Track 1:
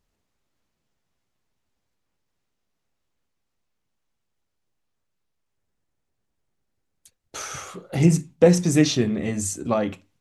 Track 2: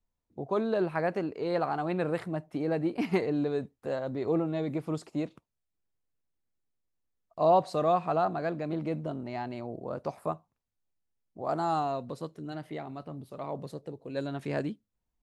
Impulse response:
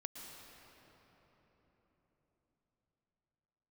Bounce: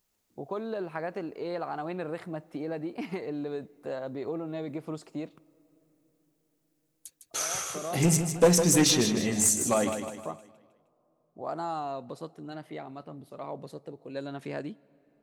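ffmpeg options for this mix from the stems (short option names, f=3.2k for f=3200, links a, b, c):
-filter_complex "[0:a]aemphasis=mode=production:type=50kf,aeval=exprs='clip(val(0),-1,0.211)':c=same,volume=-2.5dB,asplit=3[a][b][c];[b]volume=-8dB[d];[1:a]acompressor=threshold=-29dB:ratio=6,volume=-1dB,asplit=2[e][f];[f]volume=-20dB[g];[c]apad=whole_len=671617[h];[e][h]sidechaincompress=threshold=-39dB:ratio=8:attack=16:release=390[i];[2:a]atrim=start_sample=2205[j];[g][j]afir=irnorm=-1:irlink=0[k];[d]aecho=0:1:155|310|465|620|775|930:1|0.45|0.202|0.0911|0.041|0.0185[l];[a][i][k][l]amix=inputs=4:normalize=0,lowshelf=f=110:g=-11"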